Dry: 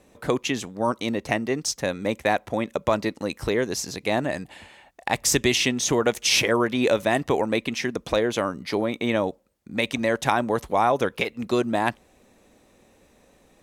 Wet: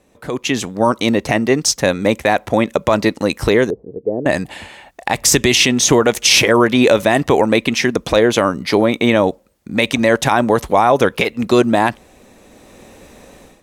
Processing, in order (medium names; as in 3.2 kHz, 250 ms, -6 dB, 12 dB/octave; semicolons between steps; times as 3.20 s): 3.70–4.26 s: four-pole ladder low-pass 500 Hz, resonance 70%; peak limiter -12.5 dBFS, peak gain reduction 9 dB; level rider gain up to 16 dB